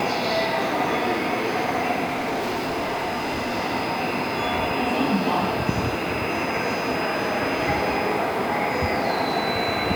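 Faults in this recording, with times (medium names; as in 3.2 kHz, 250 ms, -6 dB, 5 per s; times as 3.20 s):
2.04–3.53 s: clipped -22.5 dBFS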